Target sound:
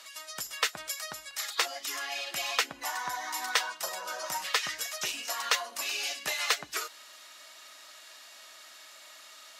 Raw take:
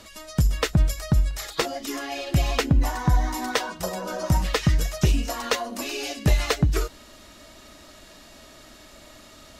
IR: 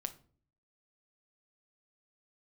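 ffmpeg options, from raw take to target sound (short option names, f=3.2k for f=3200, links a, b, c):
-af "highpass=1.1k"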